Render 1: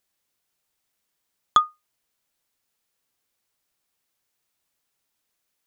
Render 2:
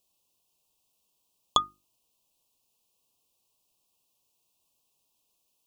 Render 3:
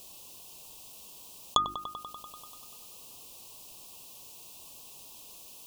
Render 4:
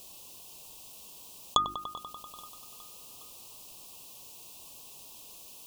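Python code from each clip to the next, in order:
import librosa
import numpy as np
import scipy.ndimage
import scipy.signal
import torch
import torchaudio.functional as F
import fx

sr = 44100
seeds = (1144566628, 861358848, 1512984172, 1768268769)

y1 = scipy.signal.sosfilt(scipy.signal.ellip(3, 1.0, 40, [1100.0, 2600.0], 'bandstop', fs=sr, output='sos'), x)
y1 = fx.hum_notches(y1, sr, base_hz=50, count=7)
y1 = F.gain(torch.from_numpy(y1), 3.0).numpy()
y2 = fx.echo_wet_lowpass(y1, sr, ms=97, feedback_pct=64, hz=2700.0, wet_db=-22.5)
y2 = fx.env_flatten(y2, sr, amount_pct=50)
y2 = F.gain(torch.from_numpy(y2), -2.5).numpy()
y3 = fx.echo_feedback(y2, sr, ms=413, feedback_pct=59, wet_db=-22.0)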